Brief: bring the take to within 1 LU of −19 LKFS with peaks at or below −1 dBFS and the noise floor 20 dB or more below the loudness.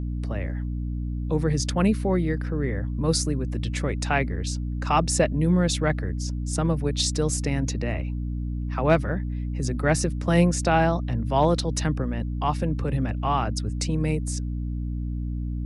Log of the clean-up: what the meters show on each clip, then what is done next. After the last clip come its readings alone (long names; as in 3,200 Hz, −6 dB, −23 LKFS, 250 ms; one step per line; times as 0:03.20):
mains hum 60 Hz; hum harmonics up to 300 Hz; level of the hum −26 dBFS; integrated loudness −25.5 LKFS; sample peak −7.5 dBFS; target loudness −19.0 LKFS
→ mains-hum notches 60/120/180/240/300 Hz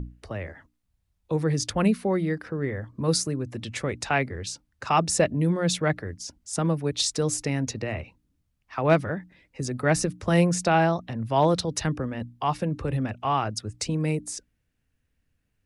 mains hum none found; integrated loudness −26.0 LKFS; sample peak −8.5 dBFS; target loudness −19.0 LKFS
→ level +7 dB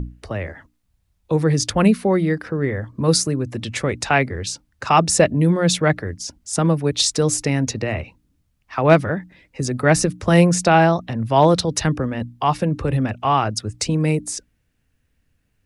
integrated loudness −19.5 LKFS; sample peak −1.5 dBFS; background noise floor −68 dBFS